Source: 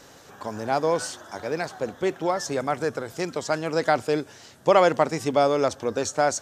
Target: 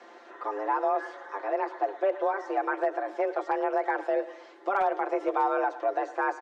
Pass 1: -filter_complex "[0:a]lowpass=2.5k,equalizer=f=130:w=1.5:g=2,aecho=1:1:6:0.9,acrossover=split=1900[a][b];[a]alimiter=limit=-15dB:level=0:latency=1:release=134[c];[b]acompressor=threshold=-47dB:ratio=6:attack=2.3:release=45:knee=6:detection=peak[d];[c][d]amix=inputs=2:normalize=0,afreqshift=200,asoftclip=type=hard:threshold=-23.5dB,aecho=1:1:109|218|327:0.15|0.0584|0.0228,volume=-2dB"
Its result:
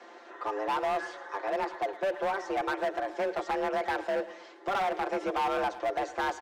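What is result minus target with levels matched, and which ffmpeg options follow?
hard clip: distortion +27 dB; compressor: peak gain reduction -9 dB
-filter_complex "[0:a]lowpass=2.5k,equalizer=f=130:w=1.5:g=2,aecho=1:1:6:0.9,acrossover=split=1900[a][b];[a]alimiter=limit=-15dB:level=0:latency=1:release=134[c];[b]acompressor=threshold=-57.5dB:ratio=6:attack=2.3:release=45:knee=6:detection=peak[d];[c][d]amix=inputs=2:normalize=0,afreqshift=200,asoftclip=type=hard:threshold=-15dB,aecho=1:1:109|218|327:0.15|0.0584|0.0228,volume=-2dB"

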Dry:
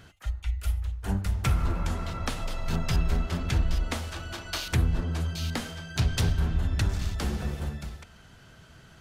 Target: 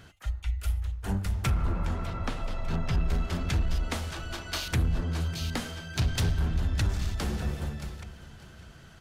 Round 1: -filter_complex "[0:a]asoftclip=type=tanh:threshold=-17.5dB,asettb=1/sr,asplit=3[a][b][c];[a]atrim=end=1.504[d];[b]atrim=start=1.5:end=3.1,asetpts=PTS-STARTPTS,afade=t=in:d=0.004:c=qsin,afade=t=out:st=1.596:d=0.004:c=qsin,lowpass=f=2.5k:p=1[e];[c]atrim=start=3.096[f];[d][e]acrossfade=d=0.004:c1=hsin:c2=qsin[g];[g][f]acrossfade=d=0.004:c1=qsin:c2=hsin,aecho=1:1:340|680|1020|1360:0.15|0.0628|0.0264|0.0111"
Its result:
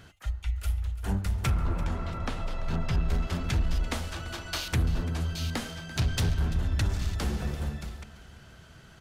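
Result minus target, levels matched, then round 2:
echo 0.26 s early
-filter_complex "[0:a]asoftclip=type=tanh:threshold=-17.5dB,asettb=1/sr,asplit=3[a][b][c];[a]atrim=end=1.504[d];[b]atrim=start=1.5:end=3.1,asetpts=PTS-STARTPTS,afade=t=in:d=0.004:c=qsin,afade=t=out:st=1.596:d=0.004:c=qsin,lowpass=f=2.5k:p=1[e];[c]atrim=start=3.096[f];[d][e]acrossfade=d=0.004:c1=hsin:c2=qsin[g];[g][f]acrossfade=d=0.004:c1=qsin:c2=hsin,aecho=1:1:600|1200|1800|2400:0.15|0.0628|0.0264|0.0111"

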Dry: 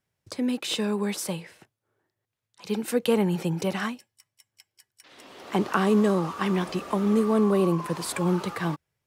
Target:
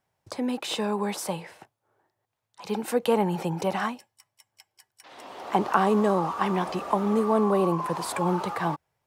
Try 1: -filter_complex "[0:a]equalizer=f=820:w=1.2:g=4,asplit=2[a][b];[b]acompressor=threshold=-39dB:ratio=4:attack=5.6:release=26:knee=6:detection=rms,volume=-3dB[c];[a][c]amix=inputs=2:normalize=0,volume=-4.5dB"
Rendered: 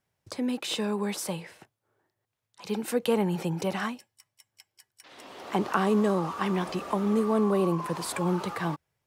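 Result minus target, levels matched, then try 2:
1000 Hz band -3.5 dB
-filter_complex "[0:a]equalizer=f=820:w=1.2:g=11.5,asplit=2[a][b];[b]acompressor=threshold=-39dB:ratio=4:attack=5.6:release=26:knee=6:detection=rms,volume=-3dB[c];[a][c]amix=inputs=2:normalize=0,volume=-4.5dB"

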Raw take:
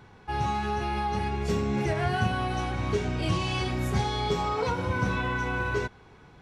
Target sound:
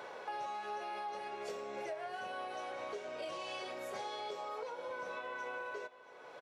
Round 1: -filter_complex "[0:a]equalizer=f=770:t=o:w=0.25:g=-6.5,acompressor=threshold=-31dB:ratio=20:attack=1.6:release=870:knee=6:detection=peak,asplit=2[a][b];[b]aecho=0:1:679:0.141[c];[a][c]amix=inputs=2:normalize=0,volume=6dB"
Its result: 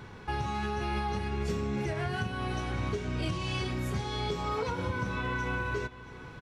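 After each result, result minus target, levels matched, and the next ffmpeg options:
compressor: peak gain reduction -11.5 dB; 500 Hz band -3.5 dB
-filter_complex "[0:a]equalizer=f=770:t=o:w=0.25:g=-6.5,acompressor=threshold=-42dB:ratio=20:attack=1.6:release=870:knee=6:detection=peak,asplit=2[a][b];[b]aecho=0:1:679:0.141[c];[a][c]amix=inputs=2:normalize=0,volume=6dB"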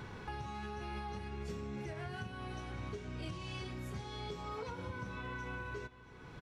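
500 Hz band -3.0 dB
-filter_complex "[0:a]highpass=f=580:t=q:w=4.4,equalizer=f=770:t=o:w=0.25:g=-6.5,acompressor=threshold=-42dB:ratio=20:attack=1.6:release=870:knee=6:detection=peak,asplit=2[a][b];[b]aecho=0:1:679:0.141[c];[a][c]amix=inputs=2:normalize=0,volume=6dB"

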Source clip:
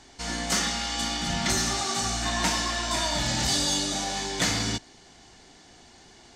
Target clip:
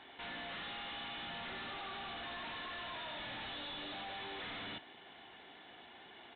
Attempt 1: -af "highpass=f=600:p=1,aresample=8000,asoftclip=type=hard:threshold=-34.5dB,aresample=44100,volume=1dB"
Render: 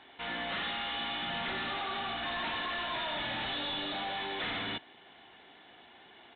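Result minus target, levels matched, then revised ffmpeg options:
hard clip: distortion -4 dB
-af "highpass=f=600:p=1,aresample=8000,asoftclip=type=hard:threshold=-45dB,aresample=44100,volume=1dB"

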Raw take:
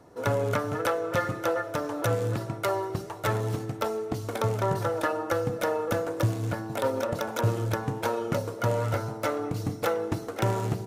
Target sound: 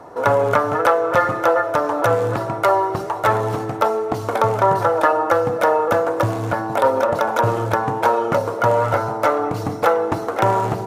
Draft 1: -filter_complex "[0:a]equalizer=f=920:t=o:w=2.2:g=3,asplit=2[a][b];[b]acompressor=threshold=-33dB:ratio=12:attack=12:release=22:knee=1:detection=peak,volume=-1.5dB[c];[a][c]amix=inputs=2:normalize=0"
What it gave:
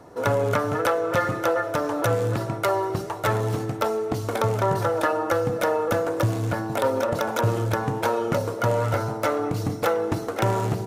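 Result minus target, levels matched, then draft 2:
1000 Hz band -3.0 dB
-filter_complex "[0:a]equalizer=f=920:t=o:w=2.2:g=14,asplit=2[a][b];[b]acompressor=threshold=-33dB:ratio=12:attack=12:release=22:knee=1:detection=peak,volume=-1.5dB[c];[a][c]amix=inputs=2:normalize=0"

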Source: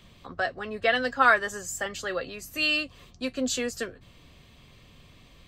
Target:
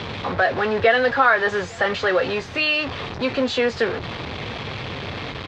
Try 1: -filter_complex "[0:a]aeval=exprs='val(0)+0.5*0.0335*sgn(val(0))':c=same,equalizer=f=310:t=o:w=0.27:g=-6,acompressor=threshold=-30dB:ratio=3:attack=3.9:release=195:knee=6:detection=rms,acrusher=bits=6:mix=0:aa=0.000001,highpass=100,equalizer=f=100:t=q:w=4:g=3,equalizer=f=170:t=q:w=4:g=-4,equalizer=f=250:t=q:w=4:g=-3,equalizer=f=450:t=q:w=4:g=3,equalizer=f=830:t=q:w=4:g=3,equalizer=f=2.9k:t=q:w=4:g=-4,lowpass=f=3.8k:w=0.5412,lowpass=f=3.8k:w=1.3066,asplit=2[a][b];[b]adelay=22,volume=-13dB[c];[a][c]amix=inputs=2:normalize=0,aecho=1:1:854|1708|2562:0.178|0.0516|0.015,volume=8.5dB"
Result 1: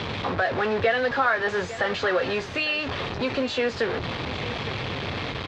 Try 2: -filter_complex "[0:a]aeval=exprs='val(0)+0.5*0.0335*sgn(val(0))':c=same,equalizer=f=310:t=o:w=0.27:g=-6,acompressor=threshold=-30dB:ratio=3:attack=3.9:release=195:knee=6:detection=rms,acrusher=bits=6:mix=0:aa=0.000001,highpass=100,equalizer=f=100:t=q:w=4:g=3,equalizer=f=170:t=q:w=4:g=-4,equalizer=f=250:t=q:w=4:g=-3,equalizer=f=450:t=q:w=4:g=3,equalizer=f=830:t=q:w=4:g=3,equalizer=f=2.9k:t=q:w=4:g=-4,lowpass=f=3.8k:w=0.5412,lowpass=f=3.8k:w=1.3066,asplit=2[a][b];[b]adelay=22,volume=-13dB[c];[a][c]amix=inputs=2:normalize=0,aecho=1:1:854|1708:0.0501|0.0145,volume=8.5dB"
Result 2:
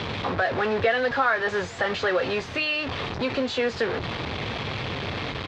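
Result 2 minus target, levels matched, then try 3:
compressor: peak gain reduction +6.5 dB
-filter_complex "[0:a]aeval=exprs='val(0)+0.5*0.0335*sgn(val(0))':c=same,equalizer=f=310:t=o:w=0.27:g=-6,acompressor=threshold=-20.5dB:ratio=3:attack=3.9:release=195:knee=6:detection=rms,acrusher=bits=6:mix=0:aa=0.000001,highpass=100,equalizer=f=100:t=q:w=4:g=3,equalizer=f=170:t=q:w=4:g=-4,equalizer=f=250:t=q:w=4:g=-3,equalizer=f=450:t=q:w=4:g=3,equalizer=f=830:t=q:w=4:g=3,equalizer=f=2.9k:t=q:w=4:g=-4,lowpass=f=3.8k:w=0.5412,lowpass=f=3.8k:w=1.3066,asplit=2[a][b];[b]adelay=22,volume=-13dB[c];[a][c]amix=inputs=2:normalize=0,aecho=1:1:854|1708:0.0501|0.0145,volume=8.5dB"

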